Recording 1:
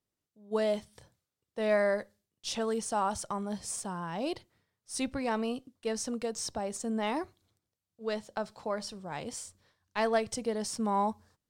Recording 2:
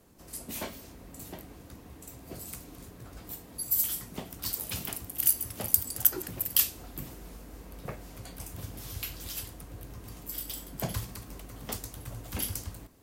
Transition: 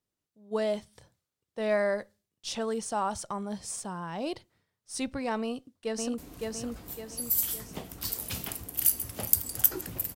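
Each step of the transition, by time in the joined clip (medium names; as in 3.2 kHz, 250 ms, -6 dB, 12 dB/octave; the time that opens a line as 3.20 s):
recording 1
5.42–6.18 s: echo throw 560 ms, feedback 45%, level -2.5 dB
6.18 s: go over to recording 2 from 2.59 s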